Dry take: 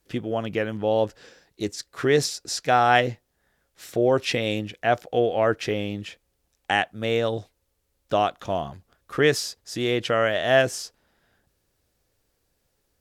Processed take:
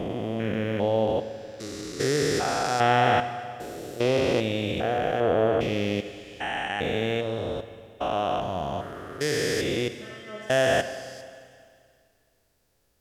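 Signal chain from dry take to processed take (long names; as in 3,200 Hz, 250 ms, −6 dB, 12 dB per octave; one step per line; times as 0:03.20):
spectrum averaged block by block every 400 ms
0:09.88–0:10.50: stiff-string resonator 210 Hz, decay 0.62 s, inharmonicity 0.002
four-comb reverb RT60 2.2 s, combs from 32 ms, DRR 10.5 dB
level +3 dB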